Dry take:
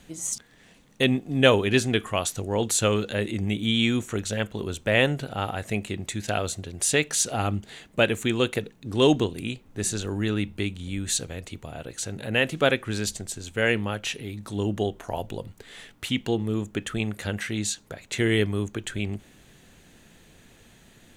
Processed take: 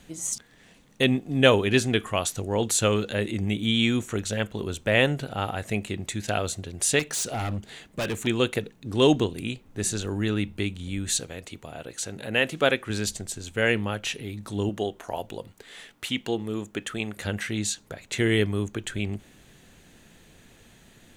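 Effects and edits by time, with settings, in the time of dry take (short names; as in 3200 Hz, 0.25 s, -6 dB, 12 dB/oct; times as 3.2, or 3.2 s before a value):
6.99–8.27 overloaded stage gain 25.5 dB
11.2–12.9 low shelf 130 Hz -9.5 dB
14.69–17.17 low shelf 170 Hz -11 dB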